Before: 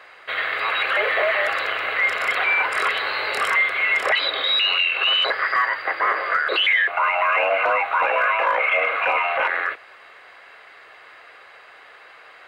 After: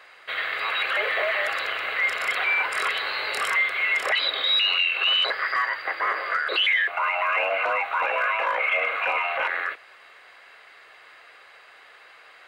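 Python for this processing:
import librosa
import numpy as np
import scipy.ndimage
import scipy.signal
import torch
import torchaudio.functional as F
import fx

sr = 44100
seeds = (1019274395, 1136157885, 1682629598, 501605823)

y = fx.high_shelf(x, sr, hz=2800.0, db=7.5)
y = y * librosa.db_to_amplitude(-6.0)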